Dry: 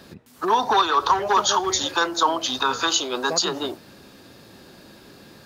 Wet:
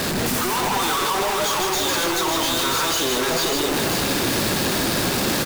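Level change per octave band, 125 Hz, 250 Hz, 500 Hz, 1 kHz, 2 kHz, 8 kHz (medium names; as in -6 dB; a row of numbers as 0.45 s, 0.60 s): +14.5 dB, +7.5 dB, +3.5 dB, -2.0 dB, +4.5 dB, +5.0 dB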